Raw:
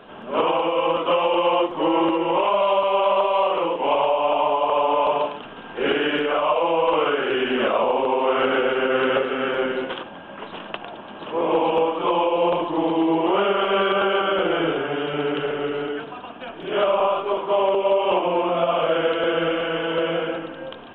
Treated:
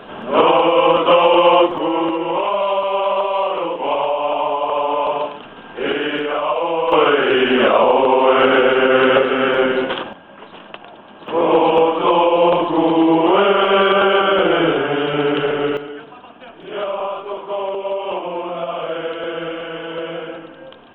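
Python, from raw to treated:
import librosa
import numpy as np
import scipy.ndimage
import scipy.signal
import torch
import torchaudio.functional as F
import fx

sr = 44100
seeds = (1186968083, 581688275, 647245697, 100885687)

y = fx.gain(x, sr, db=fx.steps((0.0, 8.0), (1.78, 1.0), (6.92, 7.5), (10.13, -3.0), (11.28, 6.5), (15.77, -3.5)))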